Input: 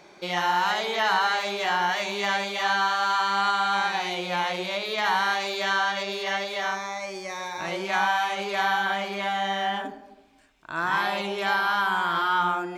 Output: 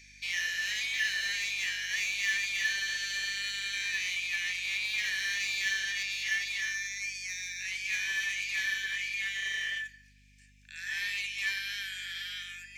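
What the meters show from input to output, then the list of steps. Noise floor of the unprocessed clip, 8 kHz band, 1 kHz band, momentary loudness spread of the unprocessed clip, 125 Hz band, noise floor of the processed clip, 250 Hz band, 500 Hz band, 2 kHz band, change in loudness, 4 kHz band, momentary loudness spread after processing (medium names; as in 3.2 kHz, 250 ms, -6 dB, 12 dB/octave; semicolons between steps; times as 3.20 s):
-51 dBFS, +4.0 dB, -35.5 dB, 7 LU, under -15 dB, -58 dBFS, under -25 dB, under -30 dB, -3.5 dB, -6.0 dB, -3.5 dB, 7 LU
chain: rippled Chebyshev high-pass 1.7 kHz, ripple 9 dB; hum 50 Hz, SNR 29 dB; in parallel at -11.5 dB: wavefolder -37.5 dBFS; on the sum: trim +3.5 dB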